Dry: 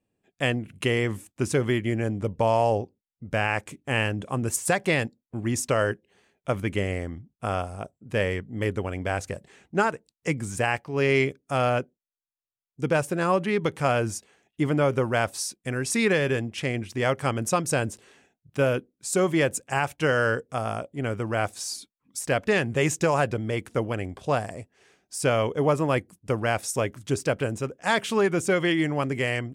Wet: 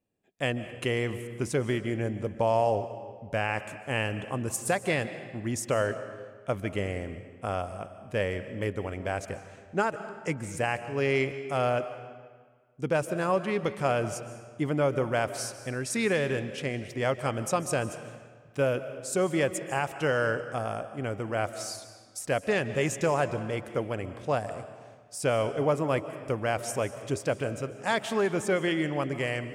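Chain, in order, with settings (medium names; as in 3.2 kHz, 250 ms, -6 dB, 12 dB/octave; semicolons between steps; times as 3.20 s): peaking EQ 610 Hz +3 dB 0.77 oct; algorithmic reverb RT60 1.6 s, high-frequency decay 0.8×, pre-delay 105 ms, DRR 11.5 dB; trim -5 dB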